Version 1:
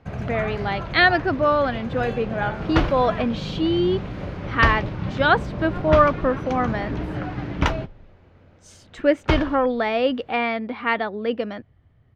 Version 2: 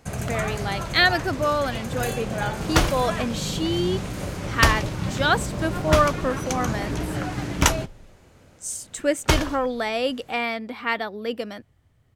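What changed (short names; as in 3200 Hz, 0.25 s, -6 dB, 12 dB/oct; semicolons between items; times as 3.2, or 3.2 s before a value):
speech -5.0 dB; master: remove air absorption 300 m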